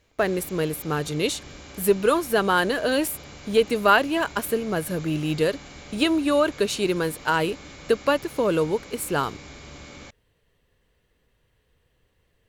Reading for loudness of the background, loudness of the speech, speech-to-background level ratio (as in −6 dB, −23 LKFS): −42.5 LKFS, −24.0 LKFS, 18.5 dB